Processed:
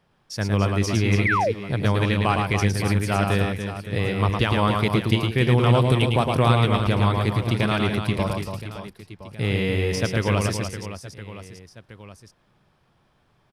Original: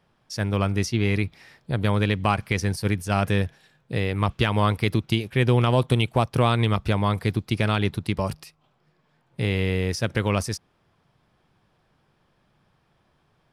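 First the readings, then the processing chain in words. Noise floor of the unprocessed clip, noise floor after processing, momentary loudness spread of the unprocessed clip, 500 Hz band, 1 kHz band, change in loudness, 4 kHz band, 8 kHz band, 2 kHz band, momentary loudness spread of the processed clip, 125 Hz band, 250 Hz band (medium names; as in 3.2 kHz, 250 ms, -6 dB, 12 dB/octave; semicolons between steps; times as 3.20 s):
-67 dBFS, -64 dBFS, 9 LU, +2.5 dB, +3.0 dB, +2.0 dB, +2.0 dB, +2.0 dB, +3.0 dB, 15 LU, +2.5 dB, +2.0 dB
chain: reverse bouncing-ball echo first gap 110 ms, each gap 1.6×, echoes 5; painted sound fall, 1.25–1.52 s, 410–2400 Hz -21 dBFS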